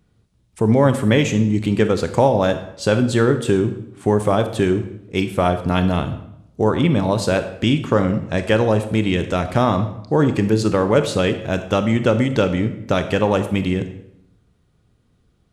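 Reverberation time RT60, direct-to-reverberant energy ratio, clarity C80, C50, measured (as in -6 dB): 0.80 s, 8.5 dB, 13.0 dB, 10.5 dB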